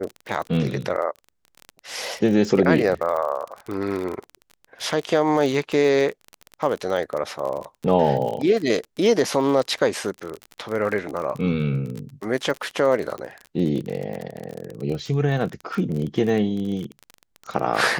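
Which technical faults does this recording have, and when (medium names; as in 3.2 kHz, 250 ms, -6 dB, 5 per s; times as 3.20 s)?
crackle 30 per s -27 dBFS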